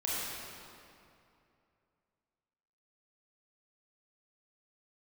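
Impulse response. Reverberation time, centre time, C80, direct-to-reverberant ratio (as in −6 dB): 2.6 s, 171 ms, −2.0 dB, −7.5 dB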